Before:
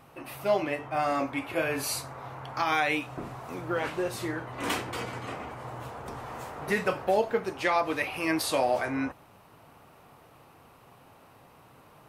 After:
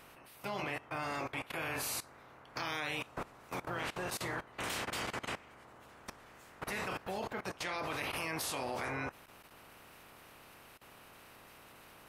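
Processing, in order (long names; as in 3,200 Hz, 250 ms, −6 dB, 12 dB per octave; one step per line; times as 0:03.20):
ceiling on every frequency bin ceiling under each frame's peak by 15 dB
output level in coarse steps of 19 dB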